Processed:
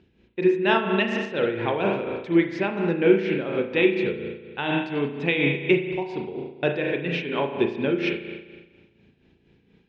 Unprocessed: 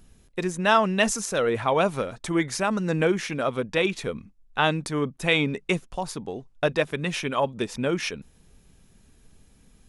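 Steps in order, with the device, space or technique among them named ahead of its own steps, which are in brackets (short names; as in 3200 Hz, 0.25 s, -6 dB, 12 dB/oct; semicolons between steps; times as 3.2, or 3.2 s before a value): combo amplifier with spring reverb and tremolo (spring tank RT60 1.4 s, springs 35 ms, chirp 60 ms, DRR 1 dB; tremolo 4.2 Hz, depth 58%; speaker cabinet 98–3700 Hz, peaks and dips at 360 Hz +9 dB, 660 Hz -5 dB, 1200 Hz -10 dB, 2500 Hz +4 dB)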